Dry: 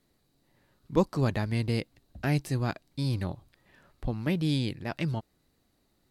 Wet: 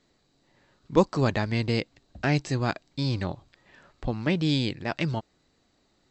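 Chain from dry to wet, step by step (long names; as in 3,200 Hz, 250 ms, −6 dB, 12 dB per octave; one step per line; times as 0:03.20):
linear-phase brick-wall low-pass 8,000 Hz
low-shelf EQ 230 Hz −6.5 dB
level +6 dB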